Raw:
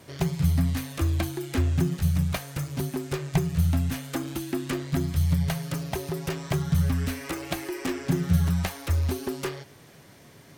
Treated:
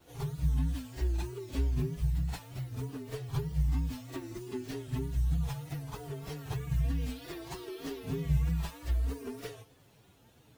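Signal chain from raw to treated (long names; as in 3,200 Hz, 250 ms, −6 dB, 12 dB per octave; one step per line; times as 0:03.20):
partials spread apart or drawn together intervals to 126%
pitch vibrato 3.2 Hz 83 cents
echo ahead of the sound 48 ms −12 dB
level −6.5 dB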